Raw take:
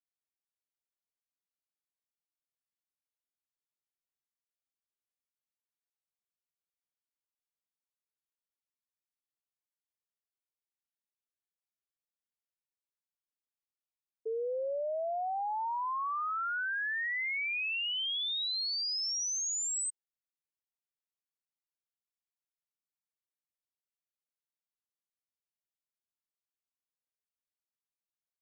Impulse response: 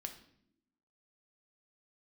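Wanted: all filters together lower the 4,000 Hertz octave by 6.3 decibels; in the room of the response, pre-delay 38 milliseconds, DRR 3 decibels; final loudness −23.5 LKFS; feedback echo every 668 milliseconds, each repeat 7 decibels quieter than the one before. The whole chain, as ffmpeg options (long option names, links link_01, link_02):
-filter_complex "[0:a]equalizer=frequency=4000:width_type=o:gain=-8.5,aecho=1:1:668|1336|2004|2672|3340:0.447|0.201|0.0905|0.0407|0.0183,asplit=2[link_01][link_02];[1:a]atrim=start_sample=2205,adelay=38[link_03];[link_02][link_03]afir=irnorm=-1:irlink=0,volume=0dB[link_04];[link_01][link_04]amix=inputs=2:normalize=0,volume=9dB"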